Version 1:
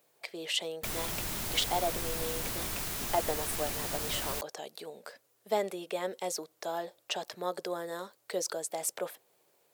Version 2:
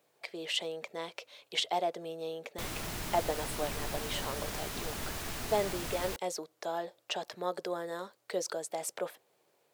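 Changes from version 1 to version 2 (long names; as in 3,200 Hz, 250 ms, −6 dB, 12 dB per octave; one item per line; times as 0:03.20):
background: entry +1.75 s
master: add high-shelf EQ 7,400 Hz −9 dB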